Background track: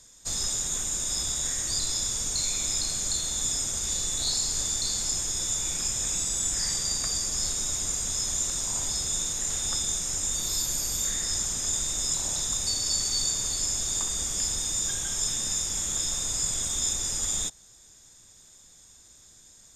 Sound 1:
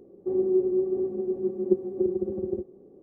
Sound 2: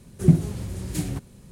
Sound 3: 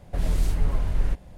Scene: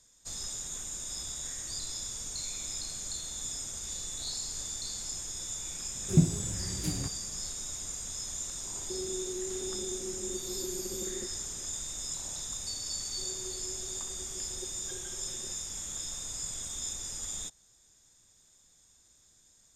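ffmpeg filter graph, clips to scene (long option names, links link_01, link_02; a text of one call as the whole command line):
ffmpeg -i bed.wav -i cue0.wav -i cue1.wav -filter_complex "[1:a]asplit=2[link_01][link_02];[0:a]volume=-9.5dB[link_03];[link_01]acompressor=threshold=-29dB:ratio=6:attack=3.2:release=140:knee=1:detection=peak[link_04];[link_02]highpass=frequency=480:width=0.5412,highpass=frequency=480:width=1.3066[link_05];[2:a]atrim=end=1.51,asetpts=PTS-STARTPTS,volume=-6.5dB,afade=type=in:duration=0.004:curve=hsin,afade=type=out:start_time=1.506:duration=0.004:curve=hsin,adelay=259749S[link_06];[link_04]atrim=end=3.02,asetpts=PTS-STARTPTS,volume=-7dB,afade=type=in:duration=0.004:curve=hsin,afade=type=out:start_time=3.016:duration=0.004:curve=hsin,adelay=8640[link_07];[link_05]atrim=end=3.02,asetpts=PTS-STARTPTS,volume=-15dB,afade=type=in:duration=0.004:curve=hsin,afade=type=out:start_time=3.016:duration=0.004:curve=hsin,adelay=12910[link_08];[link_03][link_06][link_07][link_08]amix=inputs=4:normalize=0" out.wav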